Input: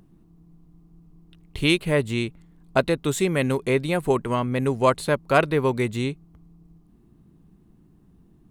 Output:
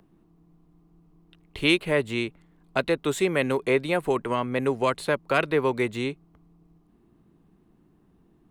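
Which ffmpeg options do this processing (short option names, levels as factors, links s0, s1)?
-filter_complex "[0:a]bass=f=250:g=-10,treble=f=4000:g=-7,acrossover=split=290|1600|2000[s0][s1][s2][s3];[s1]alimiter=limit=0.126:level=0:latency=1:release=153[s4];[s0][s4][s2][s3]amix=inputs=4:normalize=0,volume=1.19"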